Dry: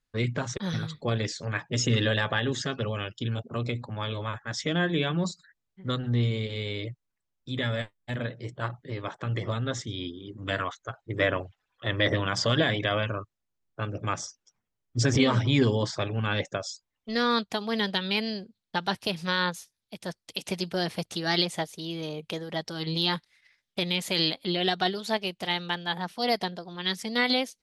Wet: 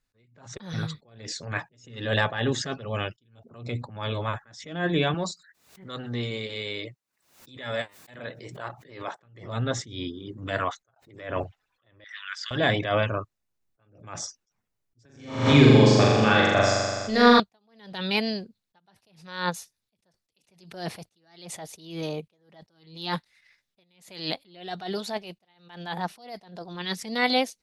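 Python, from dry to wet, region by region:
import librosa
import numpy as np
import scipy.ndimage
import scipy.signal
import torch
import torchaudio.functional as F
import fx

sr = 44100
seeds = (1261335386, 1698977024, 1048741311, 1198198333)

y = fx.chain(x, sr, fx.highpass(hz=430.0, slope=6),
    fx.pre_swell(db_per_s=120.0), at=(5.14, 9.2))
y = fx.chain(y, sr, fx.highpass(hz=54.0, slope=12),
    fx.band_squash(depth_pct=100), at=(10.96, 11.44))
y = fx.chain(y, sr, fx.ellip_highpass(hz=1500.0, order=4, stop_db=70),
    fx.high_shelf(hz=6000.0, db=-9.0), at=(12.04, 12.51))
y = fx.chain(y, sr, fx.room_flutter(wall_m=7.1, rt60_s=1.4),
    fx.band_squash(depth_pct=40), at=(15.05, 17.4))
y = fx.notch(y, sr, hz=3200.0, q=17.0)
y = fx.dynamic_eq(y, sr, hz=730.0, q=2.0, threshold_db=-43.0, ratio=4.0, max_db=5)
y = fx.attack_slew(y, sr, db_per_s=100.0)
y = y * librosa.db_to_amplitude(3.0)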